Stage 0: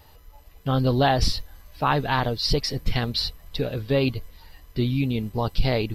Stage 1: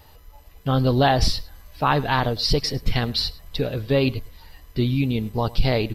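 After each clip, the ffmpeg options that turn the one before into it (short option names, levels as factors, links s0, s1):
-filter_complex "[0:a]asplit=2[s0][s1];[s1]adelay=105,volume=0.0891,highshelf=f=4000:g=-2.36[s2];[s0][s2]amix=inputs=2:normalize=0,volume=1.26"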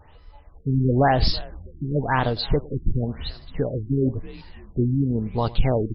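-filter_complex "[0:a]asplit=4[s0][s1][s2][s3];[s1]adelay=326,afreqshift=-96,volume=0.0794[s4];[s2]adelay=652,afreqshift=-192,volume=0.0367[s5];[s3]adelay=978,afreqshift=-288,volume=0.0168[s6];[s0][s4][s5][s6]amix=inputs=4:normalize=0,afftfilt=real='re*lt(b*sr/1024,380*pow(5600/380,0.5+0.5*sin(2*PI*0.96*pts/sr)))':imag='im*lt(b*sr/1024,380*pow(5600/380,0.5+0.5*sin(2*PI*0.96*pts/sr)))':win_size=1024:overlap=0.75"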